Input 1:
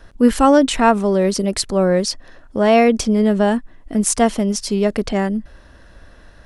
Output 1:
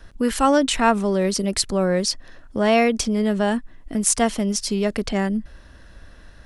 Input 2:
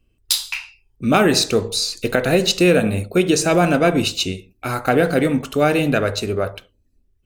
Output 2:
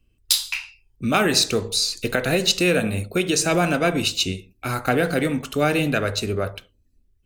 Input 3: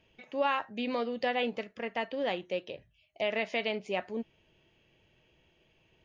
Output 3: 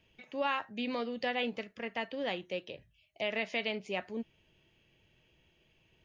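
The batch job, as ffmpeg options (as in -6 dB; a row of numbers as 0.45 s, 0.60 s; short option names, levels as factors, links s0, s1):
-filter_complex "[0:a]equalizer=f=640:t=o:w=2.3:g=-4.5,acrossover=split=450[s0][s1];[s0]alimiter=limit=0.141:level=0:latency=1:release=324[s2];[s2][s1]amix=inputs=2:normalize=0"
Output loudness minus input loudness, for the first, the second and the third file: -4.0 LU, -3.5 LU, -2.5 LU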